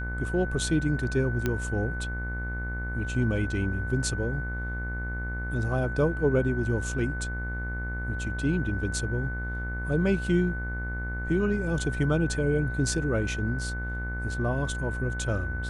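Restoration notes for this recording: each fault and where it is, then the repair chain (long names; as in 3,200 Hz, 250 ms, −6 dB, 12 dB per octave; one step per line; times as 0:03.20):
mains buzz 60 Hz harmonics 38 −33 dBFS
whistle 1,500 Hz −35 dBFS
0:01.46: click −13 dBFS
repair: click removal
notch filter 1,500 Hz, Q 30
hum removal 60 Hz, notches 38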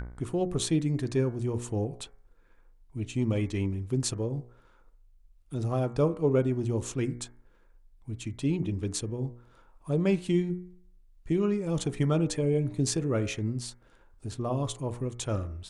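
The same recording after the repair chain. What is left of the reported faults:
none of them is left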